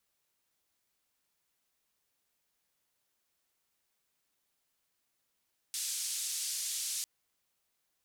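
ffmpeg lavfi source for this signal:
-f lavfi -i "anoisesrc=c=white:d=1.3:r=44100:seed=1,highpass=f=4700,lowpass=f=9000,volume=-24.7dB"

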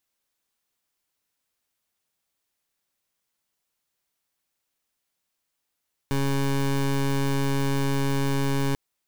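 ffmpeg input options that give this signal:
-f lavfi -i "aevalsrc='0.0668*(2*lt(mod(138*t,1),0.21)-1)':d=2.64:s=44100"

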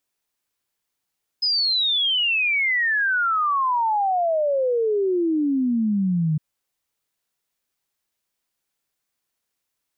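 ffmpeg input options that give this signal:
-f lavfi -i "aevalsrc='0.126*clip(min(t,4.96-t)/0.01,0,1)*sin(2*PI*5100*4.96/log(150/5100)*(exp(log(150/5100)*t/4.96)-1))':d=4.96:s=44100"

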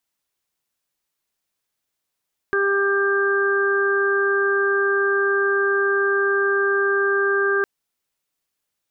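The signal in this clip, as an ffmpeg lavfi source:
-f lavfi -i "aevalsrc='0.106*sin(2*PI*397*t)+0.0126*sin(2*PI*794*t)+0.0531*sin(2*PI*1191*t)+0.0944*sin(2*PI*1588*t)':d=5.11:s=44100"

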